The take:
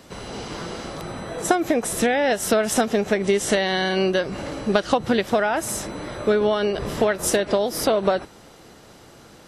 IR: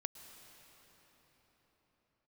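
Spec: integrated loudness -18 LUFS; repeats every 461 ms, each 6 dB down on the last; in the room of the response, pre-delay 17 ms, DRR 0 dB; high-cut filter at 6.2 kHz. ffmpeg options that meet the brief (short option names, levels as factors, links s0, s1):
-filter_complex "[0:a]lowpass=6200,aecho=1:1:461|922|1383|1844|2305|2766:0.501|0.251|0.125|0.0626|0.0313|0.0157,asplit=2[s0][s1];[1:a]atrim=start_sample=2205,adelay=17[s2];[s1][s2]afir=irnorm=-1:irlink=0,volume=1.33[s3];[s0][s3]amix=inputs=2:normalize=0,volume=1.06"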